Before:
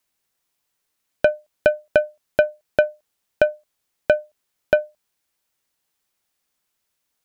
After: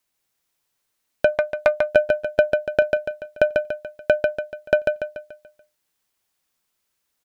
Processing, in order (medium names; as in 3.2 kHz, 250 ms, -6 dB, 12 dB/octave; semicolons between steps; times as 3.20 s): feedback delay 144 ms, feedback 44%, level -4 dB; 1.32–1.90 s: loudspeaker Doppler distortion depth 0.39 ms; trim -1 dB